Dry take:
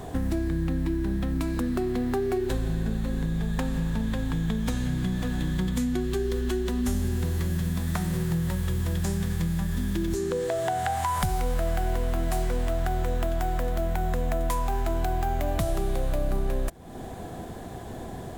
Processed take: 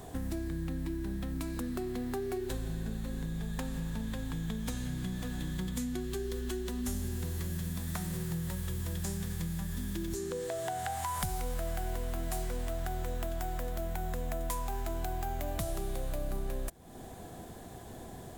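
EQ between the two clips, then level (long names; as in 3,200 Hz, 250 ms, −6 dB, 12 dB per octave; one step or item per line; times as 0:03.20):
high-shelf EQ 4,700 Hz +8.5 dB
−9.0 dB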